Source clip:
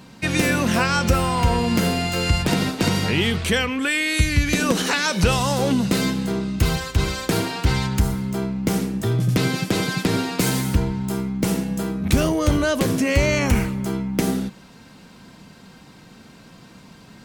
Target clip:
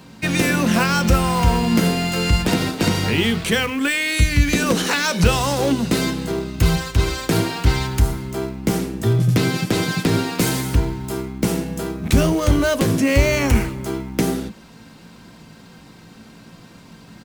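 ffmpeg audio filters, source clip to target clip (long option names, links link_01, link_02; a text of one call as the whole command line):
ffmpeg -i in.wav -filter_complex "[0:a]acrossover=split=510|2200[link_01][link_02][link_03];[link_01]asplit=2[link_04][link_05];[link_05]adelay=18,volume=-3dB[link_06];[link_04][link_06]amix=inputs=2:normalize=0[link_07];[link_02]acrusher=bits=2:mode=log:mix=0:aa=0.000001[link_08];[link_07][link_08][link_03]amix=inputs=3:normalize=0,volume=1dB" out.wav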